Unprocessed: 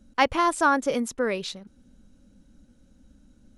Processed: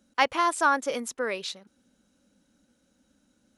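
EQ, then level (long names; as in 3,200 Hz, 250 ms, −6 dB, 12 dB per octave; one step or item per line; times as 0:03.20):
high-pass filter 620 Hz 6 dB per octave
0.0 dB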